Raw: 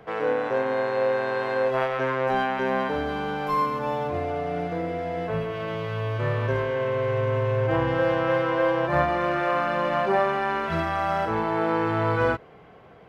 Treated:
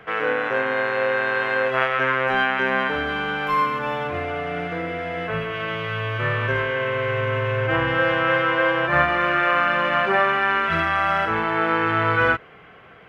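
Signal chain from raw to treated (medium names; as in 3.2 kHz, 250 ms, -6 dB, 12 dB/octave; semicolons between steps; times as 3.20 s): high-order bell 2 kHz +10 dB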